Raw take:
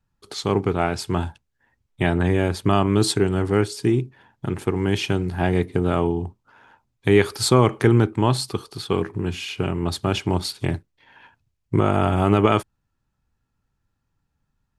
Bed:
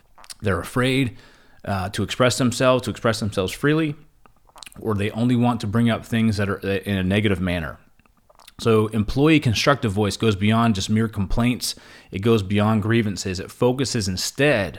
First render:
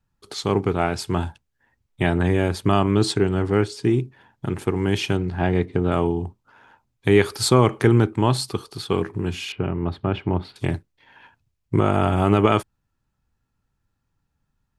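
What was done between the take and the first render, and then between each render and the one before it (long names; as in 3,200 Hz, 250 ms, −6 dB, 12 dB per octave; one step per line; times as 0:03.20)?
0:02.91–0:03.91: high-frequency loss of the air 50 metres
0:05.17–0:05.92: high-frequency loss of the air 100 metres
0:09.52–0:10.56: high-frequency loss of the air 470 metres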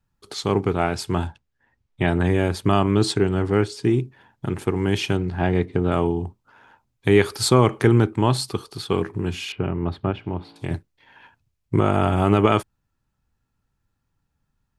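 0:01.27–0:02.08: high-frequency loss of the air 67 metres
0:10.11–0:10.71: tuned comb filter 56 Hz, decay 1.7 s, mix 50%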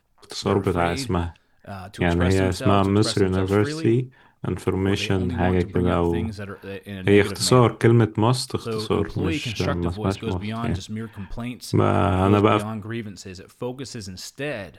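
mix in bed −11 dB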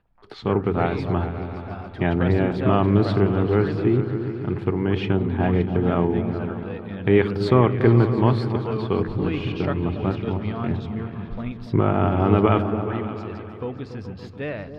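high-frequency loss of the air 360 metres
echo whose low-pass opens from repeat to repeat 142 ms, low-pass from 200 Hz, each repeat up 2 octaves, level −6 dB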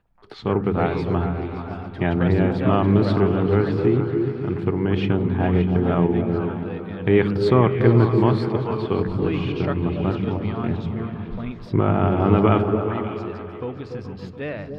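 echo through a band-pass that steps 148 ms, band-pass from 150 Hz, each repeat 1.4 octaves, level −2 dB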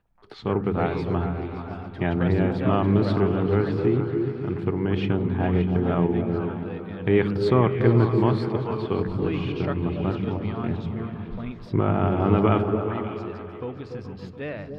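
level −3 dB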